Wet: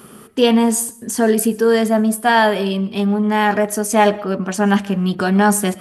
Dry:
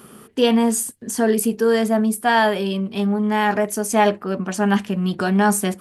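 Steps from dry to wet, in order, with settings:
comb and all-pass reverb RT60 0.56 s, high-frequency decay 0.55×, pre-delay 85 ms, DRR 19.5 dB
level +3 dB

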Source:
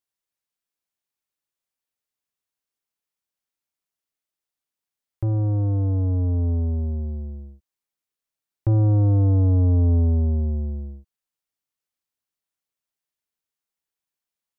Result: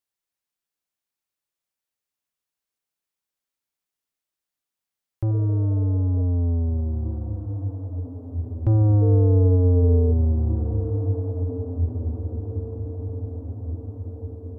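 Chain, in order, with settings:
0:09.01–0:10.11: steady tone 450 Hz −24 dBFS
on a send: feedback delay with all-pass diffusion 1,856 ms, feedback 54%, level −8.5 dB
0:05.33–0:06.19: on the sum: healed spectral selection 330–780 Hz after

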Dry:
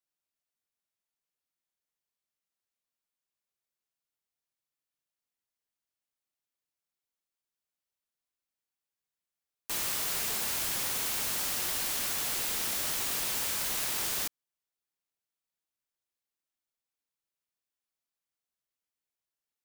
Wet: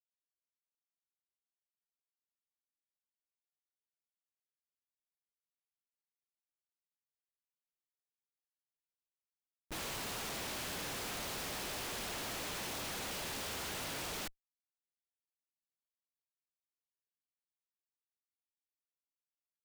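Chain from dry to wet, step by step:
Butterworth band-reject 1,500 Hz, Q 0.89
downward expander −29 dBFS
comparator with hysteresis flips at −34 dBFS

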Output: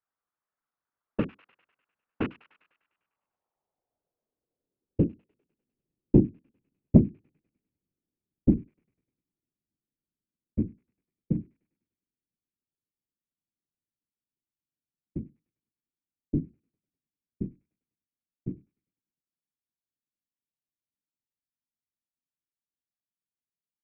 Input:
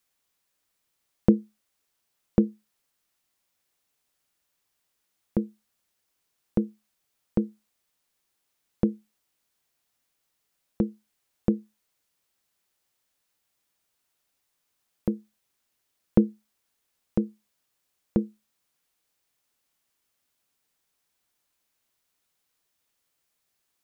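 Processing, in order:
loose part that buzzes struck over −29 dBFS, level −9 dBFS
source passing by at 0:06.52, 25 m/s, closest 28 metres
low-pass filter sweep 1,300 Hz → 230 Hz, 0:02.85–0:05.45
on a send: delay with a high-pass on its return 100 ms, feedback 58%, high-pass 1,500 Hz, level −13 dB
on the sum: random phases in short frames
saturating transformer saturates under 170 Hz
level +4.5 dB

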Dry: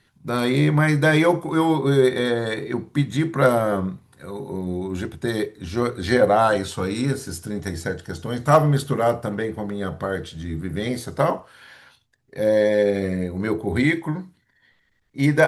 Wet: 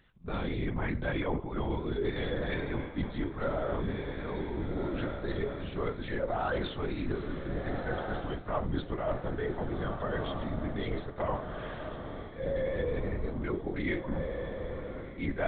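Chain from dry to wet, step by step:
linear-prediction vocoder at 8 kHz whisper
feedback delay with all-pass diffusion 1,617 ms, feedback 51%, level −13.5 dB
reversed playback
downward compressor 6 to 1, threshold −27 dBFS, peak gain reduction 16.5 dB
reversed playback
level −2.5 dB

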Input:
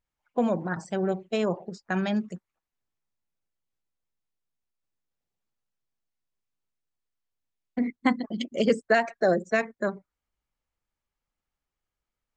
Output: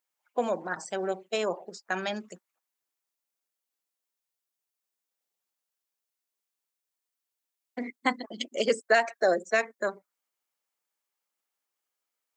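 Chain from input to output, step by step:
high-pass filter 410 Hz 12 dB per octave
high-shelf EQ 5,800 Hz +10 dB

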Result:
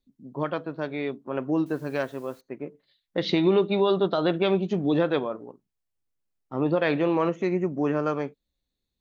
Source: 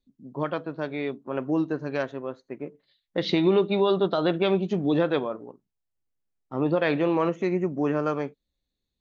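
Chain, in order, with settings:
0:01.66–0:02.41: bit-depth reduction 10 bits, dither triangular

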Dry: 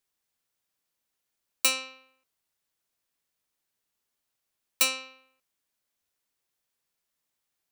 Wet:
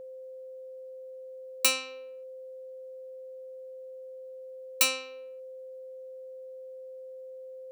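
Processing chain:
steady tone 520 Hz −41 dBFS

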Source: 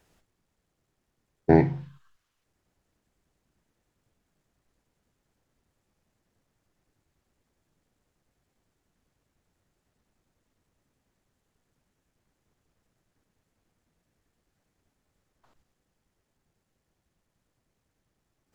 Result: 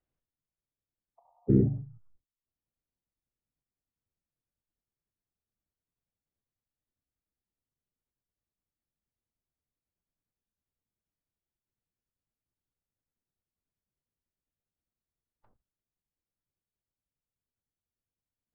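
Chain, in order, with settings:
in parallel at −5 dB: wave folding −18.5 dBFS
on the sum: noise gate with hold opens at −49 dBFS
healed spectral selection 0:01.21–0:01.67, 640–1,500 Hz after
low-shelf EQ 230 Hz +4 dB
treble cut that deepens with the level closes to 370 Hz, closed at −53.5 dBFS
phase-vocoder pitch shift with formants kept −3.5 semitones
high-frequency loss of the air 240 metres
level −4.5 dB

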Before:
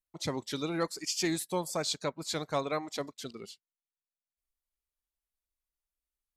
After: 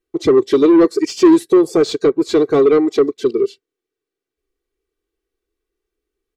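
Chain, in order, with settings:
low shelf with overshoot 560 Hz +10.5 dB, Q 3
comb filter 2.6 ms, depth 71%
mid-hump overdrive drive 22 dB, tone 1,100 Hz, clips at −2.5 dBFS
level +1.5 dB

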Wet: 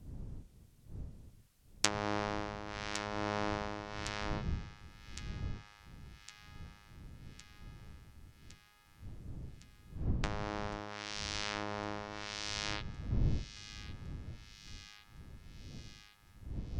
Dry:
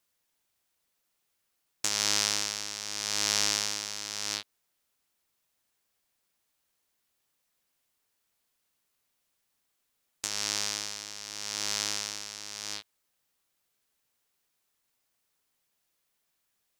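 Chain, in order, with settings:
wind on the microphone 110 Hz −48 dBFS
treble cut that deepens with the level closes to 970 Hz, closed at −30.5 dBFS
delay with a high-pass on its return 1,110 ms, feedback 67%, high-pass 1,600 Hz, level −12 dB
level +4.5 dB

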